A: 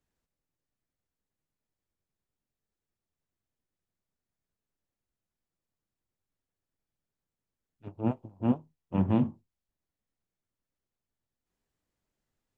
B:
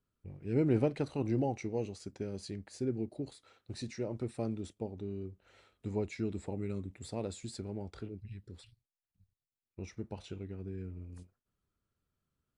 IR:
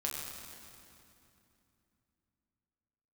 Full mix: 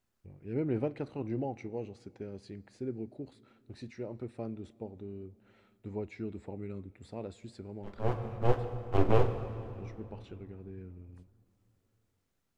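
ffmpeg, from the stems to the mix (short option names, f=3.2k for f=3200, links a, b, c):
-filter_complex "[0:a]aeval=exprs='abs(val(0))':c=same,volume=0.5dB,asplit=2[a][b];[b]volume=-6.5dB[c];[1:a]bass=f=250:g=-2,treble=f=4k:g=-13,volume=-3dB,asplit=3[d][e][f];[e]volume=-22dB[g];[f]apad=whole_len=554583[h];[a][h]sidechaincompress=threshold=-47dB:ratio=3:attack=16:release=707[i];[2:a]atrim=start_sample=2205[j];[c][g]amix=inputs=2:normalize=0[k];[k][j]afir=irnorm=-1:irlink=0[l];[i][d][l]amix=inputs=3:normalize=0"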